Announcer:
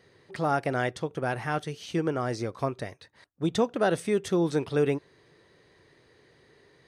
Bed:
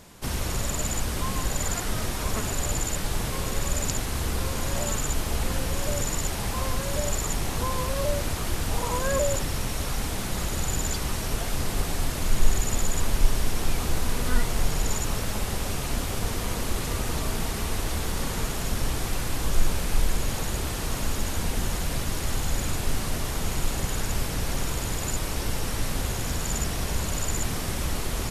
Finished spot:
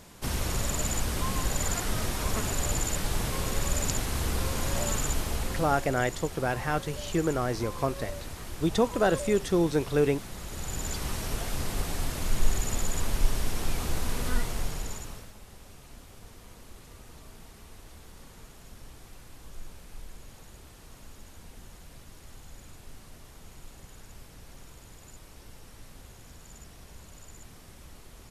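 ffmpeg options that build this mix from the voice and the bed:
-filter_complex "[0:a]adelay=5200,volume=1.06[s0];[1:a]volume=2,afade=t=out:st=5.05:d=0.9:silence=0.316228,afade=t=in:st=10.42:d=0.65:silence=0.421697,afade=t=out:st=14.28:d=1.05:silence=0.141254[s1];[s0][s1]amix=inputs=2:normalize=0"

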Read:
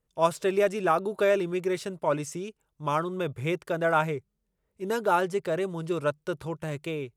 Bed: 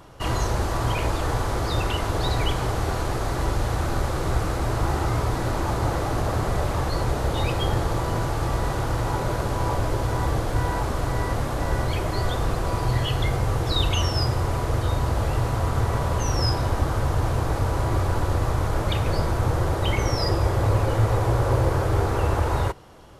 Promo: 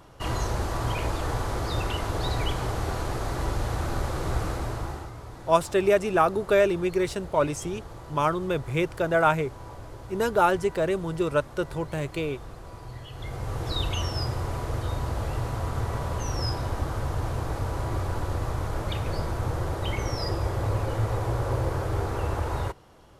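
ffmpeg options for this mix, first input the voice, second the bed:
-filter_complex "[0:a]adelay=5300,volume=1.41[s0];[1:a]volume=2.37,afade=t=out:st=4.48:d=0.64:silence=0.211349,afade=t=in:st=13.11:d=0.57:silence=0.266073[s1];[s0][s1]amix=inputs=2:normalize=0"

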